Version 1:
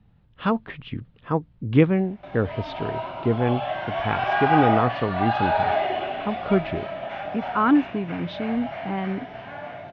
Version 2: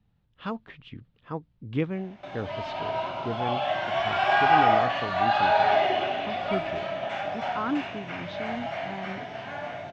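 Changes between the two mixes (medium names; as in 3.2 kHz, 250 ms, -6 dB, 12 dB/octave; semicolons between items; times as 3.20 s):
speech -11.0 dB; master: remove distance through air 200 m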